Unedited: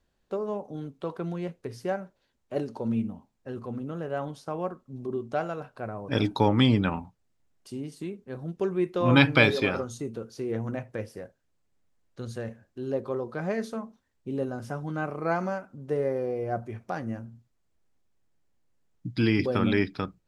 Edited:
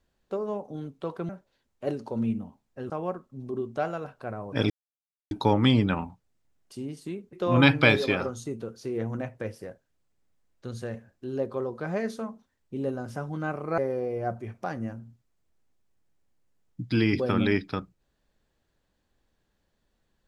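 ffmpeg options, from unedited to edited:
-filter_complex "[0:a]asplit=6[a][b][c][d][e][f];[a]atrim=end=1.292[g];[b]atrim=start=1.978:end=3.592[h];[c]atrim=start=4.458:end=6.26,asetpts=PTS-STARTPTS,afade=t=out:st=1.798:d=0.004:c=hsin,apad=pad_dur=0.61[i];[d]atrim=start=6.26:end=8.282,asetpts=PTS-STARTPTS,afade=t=in:d=0.004:c=hsin[j];[e]atrim=start=8.868:end=15.322[k];[f]atrim=start=16.038[l];[g][h]acrossfade=d=0.004:c1=hsin:c2=hsin[m];[i][j]concat=n=2:v=0:a=1[n];[m][n]acrossfade=d=0.004:c1=hsin:c2=hsin[o];[o][k]acrossfade=d=0.004:c1=hsin:c2=hsin[p];[p][l]acrossfade=d=0.004:c1=hsin:c2=hsin"

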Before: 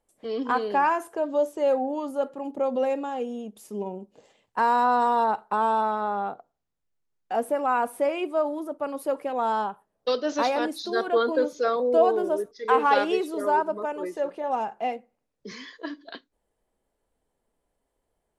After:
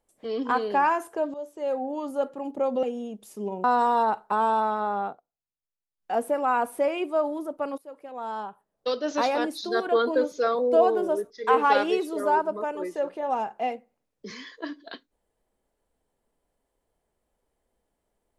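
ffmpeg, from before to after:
-filter_complex "[0:a]asplit=7[a][b][c][d][e][f][g];[a]atrim=end=1.34,asetpts=PTS-STARTPTS,afade=t=out:st=1.336:d=0.004:c=hsin:silence=0.158489[h];[b]atrim=start=1.34:end=2.832,asetpts=PTS-STARTPTS,afade=t=in:d=0.8:silence=0.158489[i];[c]atrim=start=3.168:end=3.982[j];[d]atrim=start=4.848:end=6.41,asetpts=PTS-STARTPTS,afade=t=out:st=1.382:d=0.18:c=qsin:silence=0.177828[k];[e]atrim=start=6.41:end=7.17,asetpts=PTS-STARTPTS,volume=-15dB[l];[f]atrim=start=7.17:end=8.99,asetpts=PTS-STARTPTS,afade=t=in:d=0.18:c=qsin:silence=0.177828,afade=t=out:st=1.816:d=0.004:c=hsin:silence=0.0891251[m];[g]atrim=start=8.99,asetpts=PTS-STARTPTS,afade=t=in:d=1.52:silence=0.0891251[n];[h][i]concat=n=2:v=0:a=1[o];[o][j]acrossfade=d=0.004:c1=hsin:c2=hsin[p];[k][l][m][n]concat=n=4:v=0:a=1[q];[p][q]acrossfade=d=0.004:c1=hsin:c2=hsin"

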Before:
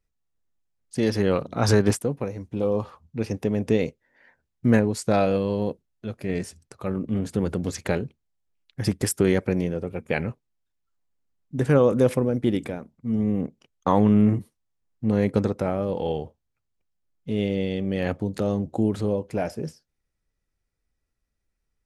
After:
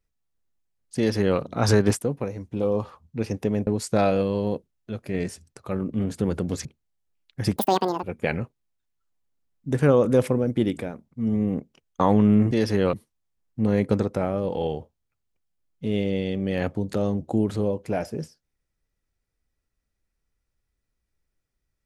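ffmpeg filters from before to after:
-filter_complex "[0:a]asplit=7[a][b][c][d][e][f][g];[a]atrim=end=3.672[h];[b]atrim=start=4.818:end=7.802[i];[c]atrim=start=8.048:end=8.964[j];[d]atrim=start=8.96:end=9.9,asetpts=PTS-STARTPTS,asetrate=87759,aresample=44100,atrim=end_sample=20831,asetpts=PTS-STARTPTS[k];[e]atrim=start=9.896:end=14.382[l];[f]atrim=start=0.968:end=1.392[m];[g]atrim=start=14.378[n];[h][i]acrossfade=d=0.004:c1=hsin:c2=hsin[o];[o][j]acrossfade=d=0.004:c1=hsin:c2=hsin[p];[p][k]acrossfade=d=0.004:c1=hsin:c2=hsin[q];[q][l]acrossfade=d=0.004:c1=hsin:c2=hsin[r];[r][m]acrossfade=d=0.004:c1=hsin:c2=hsin[s];[s][n]acrossfade=d=0.004:c1=hsin:c2=hsin"

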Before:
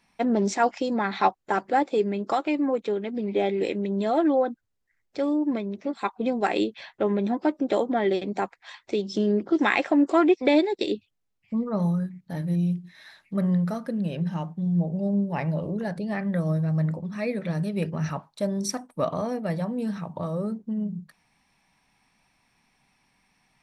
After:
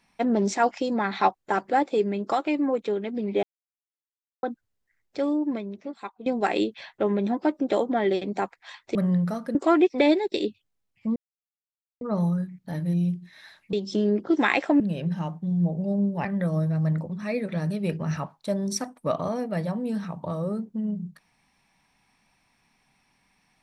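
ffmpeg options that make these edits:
-filter_complex "[0:a]asplit=10[a][b][c][d][e][f][g][h][i][j];[a]atrim=end=3.43,asetpts=PTS-STARTPTS,afade=t=out:st=3.426:d=0.004:c=hsin[k];[b]atrim=start=3.43:end=4.43,asetpts=PTS-STARTPTS,volume=0[l];[c]atrim=start=4.43:end=6.26,asetpts=PTS-STARTPTS,afade=t=in:d=0.004:c=hsin,afade=t=out:st=0.82:d=1.01:silence=0.188365[m];[d]atrim=start=6.26:end=8.952,asetpts=PTS-STARTPTS,afade=t=in:d=0.004:c=hsin:silence=0.188365[n];[e]atrim=start=13.348:end=13.952[o];[f]atrim=start=10.018:end=11.63,asetpts=PTS-STARTPTS,afade=t=out:st=1.608:d=0.004:c=hsin,apad=pad_dur=0.85[p];[g]atrim=start=11.63:end=13.352,asetpts=PTS-STARTPTS,afade=t=in:d=0.004:c=hsin[q];[h]atrim=start=8.948:end=10.022[r];[i]atrim=start=13.948:end=15.402[s];[j]atrim=start=16.178[t];[k][l][m][n]concat=n=4:v=0:a=1[u];[u][o]acrossfade=d=0.004:c1=hsin:c2=hsin[v];[p][q]concat=n=2:v=0:a=1[w];[v][w]acrossfade=d=0.004:c1=hsin:c2=hsin[x];[x][r]acrossfade=d=0.004:c1=hsin:c2=hsin[y];[y][s]acrossfade=d=0.004:c1=hsin:c2=hsin[z];[z][t]acrossfade=d=0.004:c1=hsin:c2=hsin"

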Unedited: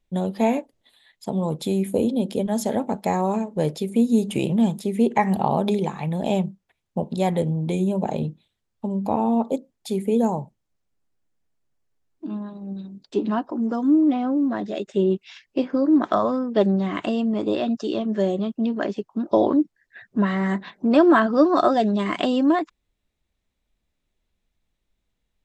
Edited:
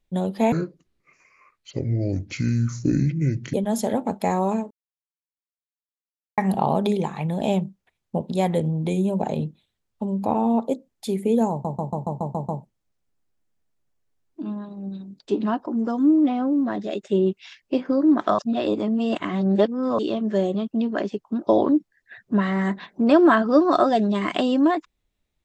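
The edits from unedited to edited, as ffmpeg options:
-filter_complex "[0:a]asplit=14[a][b][c][d][e][f][g][h][i][j][k][l][m][n];[a]atrim=end=0.524[o];[b]atrim=start=0.52:end=2.36,asetpts=PTS-STARTPTS,asetrate=26901,aresample=44100[p];[c]atrim=start=2.356:end=3.53,asetpts=PTS-STARTPTS,afade=t=out:st=1.17:d=0.004:c=hsin[q];[d]atrim=start=3.53:end=5.2,asetpts=PTS-STARTPTS,volume=0[r];[e]atrim=start=5.2:end=10.472,asetpts=PTS-STARTPTS,afade=t=in:d=0.004:c=hsin[s];[f]atrim=start=10.328:end=10.472[t];[g]atrim=start=10.328:end=10.472[u];[h]atrim=start=10.328:end=10.472[v];[i]atrim=start=10.328:end=10.472[w];[j]atrim=start=10.328:end=10.472[x];[k]atrim=start=10.328:end=10.472[y];[l]atrim=start=10.328:end=16.232[z];[m]atrim=start=16.228:end=17.832,asetpts=PTS-STARTPTS,areverse[aa];[n]atrim=start=17.828[ab];[o][p]acrossfade=d=0.004:c1=hsin:c2=hsin[ac];[q][r][s]concat=n=3:v=0:a=1[ad];[ac][ad]acrossfade=d=0.004:c1=hsin:c2=hsin[ae];[ae][t]acrossfade=d=0.004:c1=hsin:c2=hsin[af];[af][u]acrossfade=d=0.004:c1=hsin:c2=hsin[ag];[ag][v]acrossfade=d=0.004:c1=hsin:c2=hsin[ah];[ah][w]acrossfade=d=0.004:c1=hsin:c2=hsin[ai];[ai][x]acrossfade=d=0.004:c1=hsin:c2=hsin[aj];[aj][y]acrossfade=d=0.004:c1=hsin:c2=hsin[ak];[ak][z]acrossfade=d=0.004:c1=hsin:c2=hsin[al];[al][aa]acrossfade=d=0.004:c1=hsin:c2=hsin[am];[am][ab]acrossfade=d=0.004:c1=hsin:c2=hsin"

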